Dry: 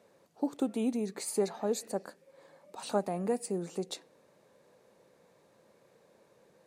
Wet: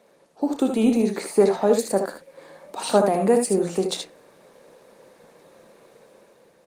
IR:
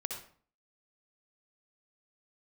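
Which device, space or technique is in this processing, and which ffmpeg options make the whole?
video call: -filter_complex "[0:a]bandreject=frequency=60:width_type=h:width=6,bandreject=frequency=120:width_type=h:width=6,bandreject=frequency=180:width_type=h:width=6,asettb=1/sr,asplit=3[link_01][link_02][link_03];[link_01]atrim=end=0.744[link_04];[link_02]atrim=start=0.74:end=1.79,asetpts=PTS-STARTPTS,afade=type=in:duration=0.004:curve=qsin,afade=type=out:start_time=1.046:duration=0.004:curve=qsin,acrossover=split=2700[link_05][link_06];[link_06]acompressor=threshold=-49dB:ratio=4:attack=1:release=60[link_07];[link_05][link_07]amix=inputs=2:normalize=0[link_08];[link_03]atrim=start=1.786[link_09];[link_04][link_08]acrossfade=duration=0.004:curve1=hsin:curve2=qsin[link_10];[link_10][link_09]acrossfade=duration=0.004:curve1=qsin:curve2=hsin,highpass=150,equalizer=frequency=3500:width_type=o:width=2.6:gain=2,aecho=1:1:31|64|77:0.237|0.282|0.447,dynaudnorm=framelen=200:gausssize=7:maxgain=6dB,volume=6.5dB" -ar 48000 -c:a libopus -b:a 32k

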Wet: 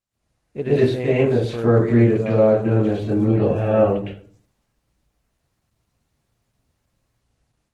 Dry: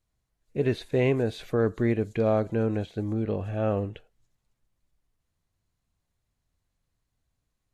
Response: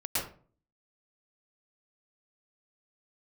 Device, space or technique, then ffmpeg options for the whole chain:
far-field microphone of a smart speaker: -filter_complex "[1:a]atrim=start_sample=2205[link_01];[0:a][link_01]afir=irnorm=-1:irlink=0,highpass=frequency=110:poles=1,dynaudnorm=framelen=130:gausssize=3:maxgain=10dB,volume=-4dB" -ar 48000 -c:a libopus -b:a 16k

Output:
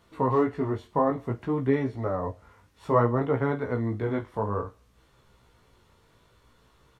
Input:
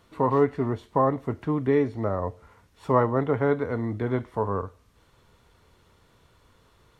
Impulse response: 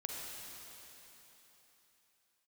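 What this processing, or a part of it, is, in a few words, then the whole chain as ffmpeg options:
double-tracked vocal: -filter_complex "[0:a]asplit=2[link_01][link_02];[link_02]adelay=33,volume=-14dB[link_03];[link_01][link_03]amix=inputs=2:normalize=0,flanger=delay=15:depth=4.7:speed=0.58,volume=1.5dB"

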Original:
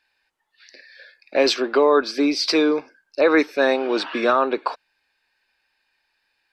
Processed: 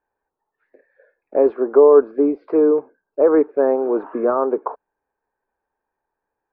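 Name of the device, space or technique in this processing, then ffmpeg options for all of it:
under water: -af "lowpass=frequency=1100:width=0.5412,lowpass=frequency=1100:width=1.3066,equalizer=frequency=430:width_type=o:width=0.32:gain=8"

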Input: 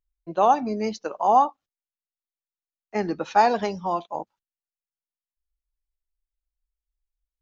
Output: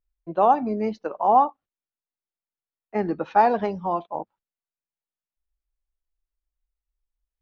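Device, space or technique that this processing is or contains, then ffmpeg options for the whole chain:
phone in a pocket: -af "lowpass=3500,highshelf=frequency=2300:gain=-9.5,volume=1.5dB"

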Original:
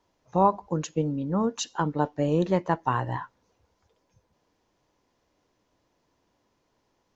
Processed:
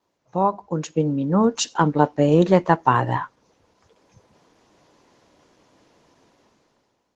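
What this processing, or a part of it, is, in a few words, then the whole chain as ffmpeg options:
video call: -filter_complex "[0:a]asettb=1/sr,asplit=3[link_01][link_02][link_03];[link_01]atrim=end=1.464[link_04];[link_02]atrim=start=1.46:end=3.18,asetpts=PTS-STARTPTS,afade=type=in:duration=0.004:curve=qsin,afade=type=out:start_time=1.716:duration=0.004:curve=qsin,highshelf=frequency=3100:gain=2[link_05];[link_03]atrim=start=3.176[link_06];[link_04][link_05]acrossfade=duration=0.004:curve1=hsin:curve2=qsin[link_07];[link_07][link_06]acrossfade=duration=0.004:curve1=qsin:curve2=hsin,highpass=110,dynaudnorm=framelen=240:gausssize=7:maxgain=16dB" -ar 48000 -c:a libopus -b:a 16k

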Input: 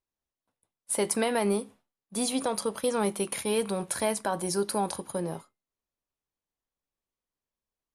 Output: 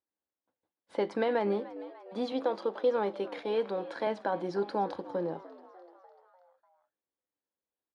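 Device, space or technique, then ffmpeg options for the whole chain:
frequency-shifting delay pedal into a guitar cabinet: -filter_complex "[0:a]asettb=1/sr,asplit=3[link_01][link_02][link_03];[link_01]atrim=end=2.324[link_04];[link_02]atrim=start=2.32:end=4.07,asetpts=PTS-STARTPTS,afade=type=in:duration=0.004:curve=qsin,afade=type=out:start_time=1.746:duration=0.004:curve=qsin,highpass=240[link_05];[link_03]atrim=start=4.066[link_06];[link_04][link_05]acrossfade=duration=0.004:curve1=hsin:curve2=qsin[link_07];[link_07][link_06]acrossfade=duration=0.004:curve1=qsin:curve2=hsin,asplit=6[link_08][link_09][link_10][link_11][link_12][link_13];[link_09]adelay=297,afreqshift=90,volume=-18dB[link_14];[link_10]adelay=594,afreqshift=180,volume=-22.4dB[link_15];[link_11]adelay=891,afreqshift=270,volume=-26.9dB[link_16];[link_12]adelay=1188,afreqshift=360,volume=-31.3dB[link_17];[link_13]adelay=1485,afreqshift=450,volume=-35.7dB[link_18];[link_08][link_14][link_15][link_16][link_17][link_18]amix=inputs=6:normalize=0,highpass=95,equalizer=frequency=130:width_type=q:width=4:gain=-7,equalizer=frequency=310:width_type=q:width=4:gain=9,equalizer=frequency=510:width_type=q:width=4:gain=8,equalizer=frequency=820:width_type=q:width=4:gain=5,equalizer=frequency=1600:width_type=q:width=4:gain=4,equalizer=frequency=2600:width_type=q:width=4:gain=-5,lowpass=frequency=3900:width=0.5412,lowpass=frequency=3900:width=1.3066,volume=-6dB"

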